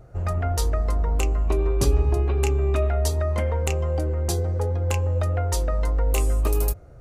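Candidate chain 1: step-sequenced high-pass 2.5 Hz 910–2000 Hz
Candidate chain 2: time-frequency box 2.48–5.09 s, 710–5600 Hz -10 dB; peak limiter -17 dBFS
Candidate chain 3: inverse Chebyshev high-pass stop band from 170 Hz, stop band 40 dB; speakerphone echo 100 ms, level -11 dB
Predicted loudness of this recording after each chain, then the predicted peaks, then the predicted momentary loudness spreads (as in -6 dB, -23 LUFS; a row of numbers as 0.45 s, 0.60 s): -30.5 LUFS, -26.0 LUFS, -30.5 LUFS; -7.5 dBFS, -17.0 dBFS, -9.0 dBFS; 9 LU, 2 LU, 6 LU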